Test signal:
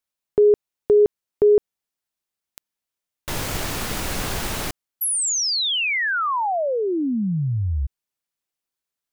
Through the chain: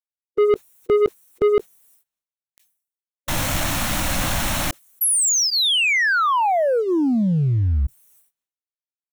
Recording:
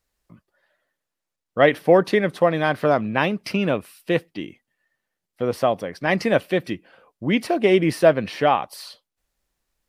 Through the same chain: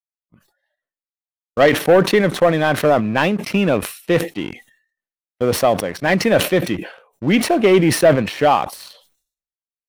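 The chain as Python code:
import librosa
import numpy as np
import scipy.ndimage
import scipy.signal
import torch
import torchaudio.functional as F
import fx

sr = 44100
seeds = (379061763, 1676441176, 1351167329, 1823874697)

y = fx.gate_hold(x, sr, open_db=-40.0, close_db=-46.0, hold_ms=388.0, range_db=-20, attack_ms=5.2, release_ms=34.0)
y = fx.notch(y, sr, hz=4800.0, q=8.2)
y = fx.noise_reduce_blind(y, sr, reduce_db=16)
y = fx.leveller(y, sr, passes=2)
y = fx.sustainer(y, sr, db_per_s=110.0)
y = F.gain(torch.from_numpy(y), -2.0).numpy()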